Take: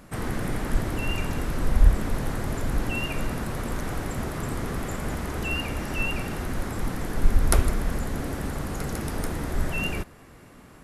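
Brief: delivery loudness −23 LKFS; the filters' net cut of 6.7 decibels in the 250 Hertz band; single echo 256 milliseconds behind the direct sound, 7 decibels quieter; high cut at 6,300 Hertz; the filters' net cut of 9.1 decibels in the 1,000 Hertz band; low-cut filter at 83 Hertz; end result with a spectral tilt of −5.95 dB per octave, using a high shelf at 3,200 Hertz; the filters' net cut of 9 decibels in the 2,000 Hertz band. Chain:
high-pass filter 83 Hz
low-pass filter 6,300 Hz
parametric band 250 Hz −8.5 dB
parametric band 1,000 Hz −9 dB
parametric band 2,000 Hz −8.5 dB
high-shelf EQ 3,200 Hz −5 dB
single-tap delay 256 ms −7 dB
level +12 dB

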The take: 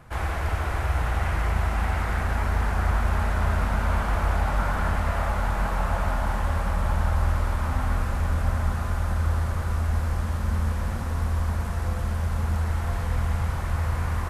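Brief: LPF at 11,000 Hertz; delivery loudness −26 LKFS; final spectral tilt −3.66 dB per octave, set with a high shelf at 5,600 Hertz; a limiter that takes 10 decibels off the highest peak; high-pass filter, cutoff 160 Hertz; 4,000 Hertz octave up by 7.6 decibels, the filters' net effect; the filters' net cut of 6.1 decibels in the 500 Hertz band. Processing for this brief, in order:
high-pass filter 160 Hz
low-pass filter 11,000 Hz
parametric band 500 Hz −8.5 dB
parametric band 4,000 Hz +8 dB
high-shelf EQ 5,600 Hz +5.5 dB
level +10 dB
brickwall limiter −17.5 dBFS

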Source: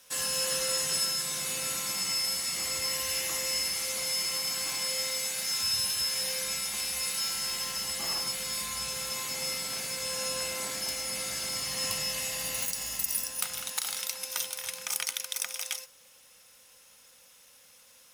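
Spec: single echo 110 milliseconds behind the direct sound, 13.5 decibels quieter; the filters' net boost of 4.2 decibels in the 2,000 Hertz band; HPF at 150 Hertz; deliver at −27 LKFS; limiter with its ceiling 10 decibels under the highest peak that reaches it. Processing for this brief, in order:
high-pass filter 150 Hz
parametric band 2,000 Hz +5 dB
brickwall limiter −21.5 dBFS
single-tap delay 110 ms −13.5 dB
level +2.5 dB

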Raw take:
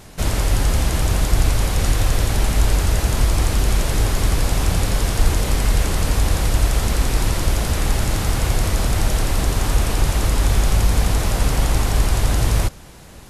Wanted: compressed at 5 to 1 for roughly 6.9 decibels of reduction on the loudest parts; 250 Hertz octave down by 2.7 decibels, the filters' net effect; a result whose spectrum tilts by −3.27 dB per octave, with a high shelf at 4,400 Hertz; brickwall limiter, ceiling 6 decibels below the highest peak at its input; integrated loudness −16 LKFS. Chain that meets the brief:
parametric band 250 Hz −4 dB
high-shelf EQ 4,400 Hz +7.5 dB
downward compressor 5 to 1, threshold −18 dBFS
level +9.5 dB
brickwall limiter −5 dBFS

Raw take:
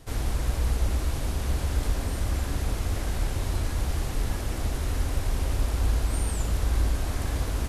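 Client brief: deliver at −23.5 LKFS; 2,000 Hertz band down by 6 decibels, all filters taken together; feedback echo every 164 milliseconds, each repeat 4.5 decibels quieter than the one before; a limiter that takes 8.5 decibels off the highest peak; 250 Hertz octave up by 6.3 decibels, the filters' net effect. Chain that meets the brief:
parametric band 250 Hz +8 dB
parametric band 2,000 Hz −8 dB
brickwall limiter −21.5 dBFS
repeating echo 164 ms, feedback 60%, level −4.5 dB
level +6 dB

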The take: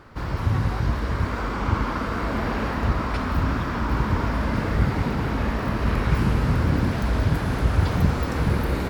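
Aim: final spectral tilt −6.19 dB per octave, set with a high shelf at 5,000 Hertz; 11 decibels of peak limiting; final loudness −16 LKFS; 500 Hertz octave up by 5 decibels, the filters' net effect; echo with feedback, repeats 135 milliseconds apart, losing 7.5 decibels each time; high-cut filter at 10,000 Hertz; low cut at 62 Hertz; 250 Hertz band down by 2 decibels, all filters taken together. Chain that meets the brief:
high-pass filter 62 Hz
low-pass filter 10,000 Hz
parametric band 250 Hz −4.5 dB
parametric band 500 Hz +7.5 dB
high-shelf EQ 5,000 Hz −6.5 dB
brickwall limiter −17.5 dBFS
repeating echo 135 ms, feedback 42%, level −7.5 dB
level +10.5 dB

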